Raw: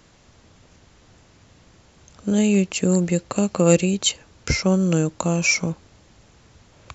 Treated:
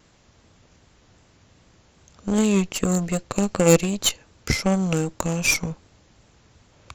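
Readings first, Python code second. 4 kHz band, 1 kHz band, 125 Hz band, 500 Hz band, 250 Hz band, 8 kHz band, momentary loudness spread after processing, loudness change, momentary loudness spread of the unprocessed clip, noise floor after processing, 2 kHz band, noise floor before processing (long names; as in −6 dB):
−1.0 dB, +1.0 dB, −2.5 dB, −1.0 dB, −2.5 dB, can't be measured, 10 LU, −1.5 dB, 9 LU, −58 dBFS, −1.5 dB, −54 dBFS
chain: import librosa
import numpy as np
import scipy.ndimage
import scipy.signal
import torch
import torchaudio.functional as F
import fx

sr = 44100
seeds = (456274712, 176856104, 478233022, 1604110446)

y = fx.cheby_harmonics(x, sr, harmonics=(7, 8), levels_db=(-27, -20), full_scale_db=-2.0)
y = fx.vibrato(y, sr, rate_hz=2.6, depth_cents=37.0)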